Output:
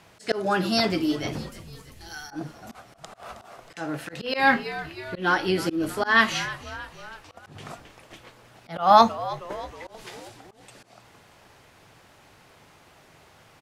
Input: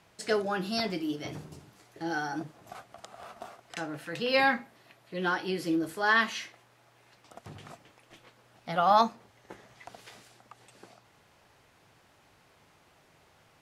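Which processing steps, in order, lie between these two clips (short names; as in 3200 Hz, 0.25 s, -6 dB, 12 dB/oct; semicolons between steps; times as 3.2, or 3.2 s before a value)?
1.49–2.31 differentiator; frequency-shifting echo 0.317 s, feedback 58%, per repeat -82 Hz, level -17 dB; auto swell 0.162 s; gain +8 dB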